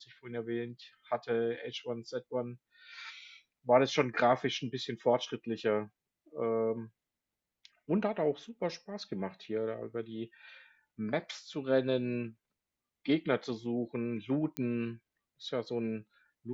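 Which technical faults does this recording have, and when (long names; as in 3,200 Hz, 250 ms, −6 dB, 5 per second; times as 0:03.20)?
0:14.57: click −19 dBFS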